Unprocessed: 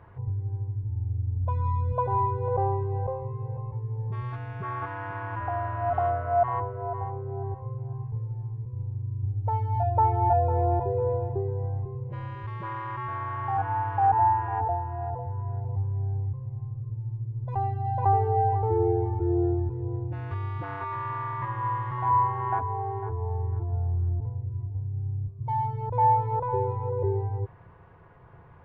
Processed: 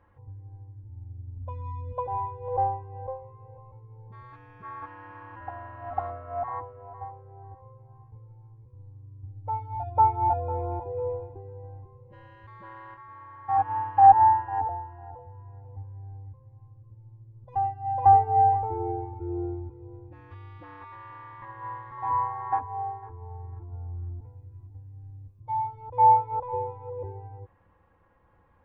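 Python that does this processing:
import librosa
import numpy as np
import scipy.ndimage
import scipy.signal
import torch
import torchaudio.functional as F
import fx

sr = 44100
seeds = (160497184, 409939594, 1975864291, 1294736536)

y = fx.comb_fb(x, sr, f0_hz=110.0, decay_s=0.33, harmonics='all', damping=0.0, mix_pct=60, at=(12.94, 13.49))
y = fx.high_shelf(y, sr, hz=2000.0, db=10.5, at=(24.19, 25.4))
y = fx.dynamic_eq(y, sr, hz=820.0, q=2.7, threshold_db=-37.0, ratio=4.0, max_db=5)
y = y + 0.71 * np.pad(y, (int(3.7 * sr / 1000.0), 0))[:len(y)]
y = fx.upward_expand(y, sr, threshold_db=-31.0, expansion=1.5)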